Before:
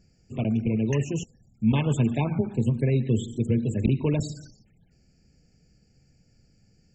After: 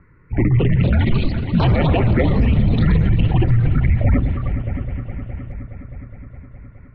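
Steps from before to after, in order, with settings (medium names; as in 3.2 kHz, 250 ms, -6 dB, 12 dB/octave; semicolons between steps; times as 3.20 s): high-pass 130 Hz 12 dB/octave; distance through air 370 m; on a send: multi-head delay 208 ms, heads all three, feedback 66%, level -21.5 dB; on the sum: mistuned SSB -350 Hz 290–2500 Hz; ever faster or slower copies 312 ms, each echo +5 st, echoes 2; loudness maximiser +31 dB; trim -7 dB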